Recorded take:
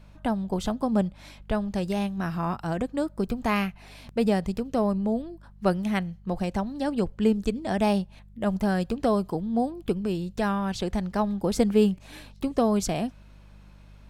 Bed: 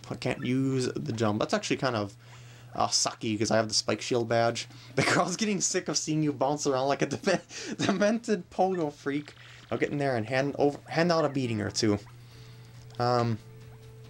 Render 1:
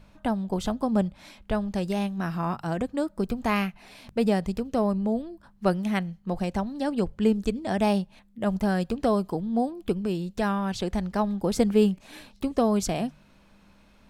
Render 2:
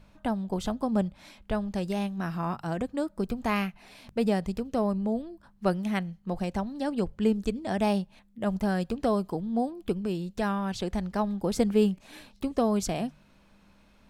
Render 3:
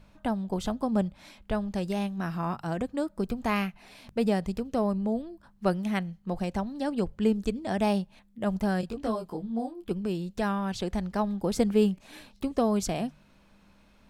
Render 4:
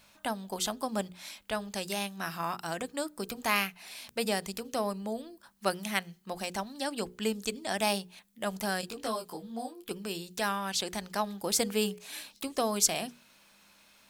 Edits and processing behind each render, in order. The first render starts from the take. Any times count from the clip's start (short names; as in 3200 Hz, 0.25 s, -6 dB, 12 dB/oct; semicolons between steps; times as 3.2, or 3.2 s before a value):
de-hum 50 Hz, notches 3
gain -2.5 dB
8.81–9.91 detuned doubles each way 15 cents
tilt +4 dB/oct; notches 60/120/180/240/300/360/420/480 Hz